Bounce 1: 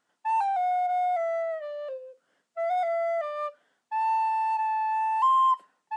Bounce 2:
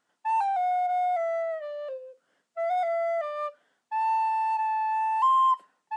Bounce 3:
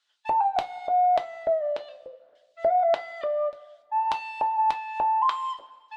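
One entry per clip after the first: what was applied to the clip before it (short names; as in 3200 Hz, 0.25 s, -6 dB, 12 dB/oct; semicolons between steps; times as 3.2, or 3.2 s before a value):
nothing audible
LFO band-pass square 1.7 Hz 590–3800 Hz; two-slope reverb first 0.21 s, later 1.6 s, from -19 dB, DRR 3.5 dB; harmonic-percussive split percussive +7 dB; gain +6.5 dB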